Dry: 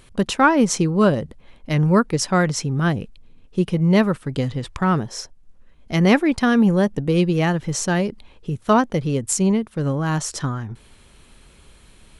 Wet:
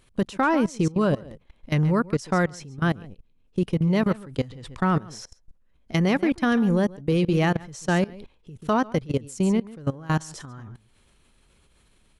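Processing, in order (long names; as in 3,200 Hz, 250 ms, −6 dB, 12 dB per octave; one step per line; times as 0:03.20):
slap from a distant wall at 24 metres, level −14 dB
output level in coarse steps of 20 dB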